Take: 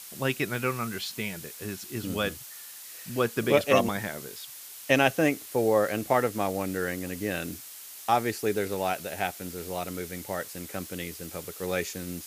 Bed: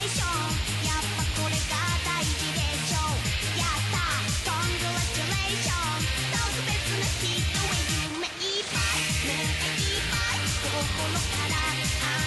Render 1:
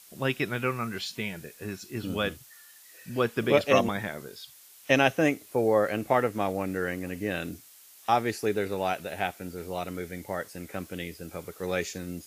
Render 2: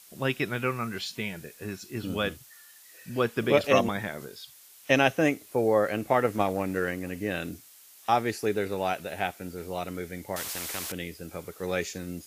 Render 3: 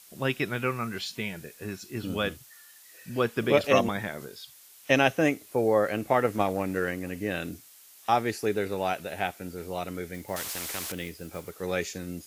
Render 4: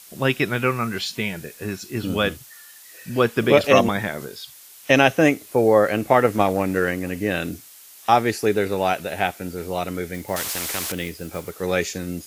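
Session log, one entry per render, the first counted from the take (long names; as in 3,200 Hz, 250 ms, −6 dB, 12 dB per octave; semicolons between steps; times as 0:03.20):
noise reduction from a noise print 9 dB
0:03.64–0:04.26: upward compression, threshold −33 dBFS; 0:06.24–0:06.91: transient designer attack +7 dB, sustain +3 dB; 0:10.36–0:10.92: every bin compressed towards the loudest bin 4 to 1
0:10.14–0:11.51: one scale factor per block 5 bits
level +7.5 dB; brickwall limiter −2 dBFS, peak gain reduction 2 dB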